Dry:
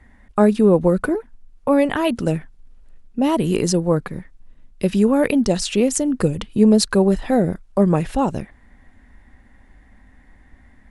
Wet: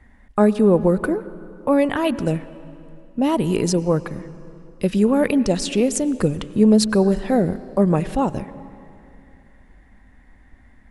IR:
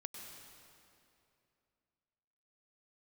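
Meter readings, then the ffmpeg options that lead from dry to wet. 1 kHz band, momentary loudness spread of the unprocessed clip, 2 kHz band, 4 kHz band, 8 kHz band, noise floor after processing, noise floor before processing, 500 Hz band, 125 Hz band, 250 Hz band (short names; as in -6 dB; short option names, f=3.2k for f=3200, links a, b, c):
-1.0 dB, 11 LU, -1.0 dB, -2.0 dB, -2.0 dB, -51 dBFS, -51 dBFS, -1.0 dB, -1.0 dB, -0.5 dB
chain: -filter_complex "[0:a]asplit=2[a][b];[1:a]atrim=start_sample=2205,highshelf=f=5.3k:g=-11.5[c];[b][c]afir=irnorm=-1:irlink=0,volume=-6.5dB[d];[a][d]amix=inputs=2:normalize=0,volume=-3dB"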